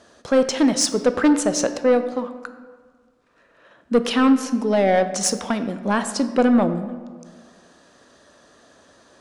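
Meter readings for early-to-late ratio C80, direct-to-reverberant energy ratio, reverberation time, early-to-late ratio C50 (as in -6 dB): 12.5 dB, 9.5 dB, 1.6 s, 11.0 dB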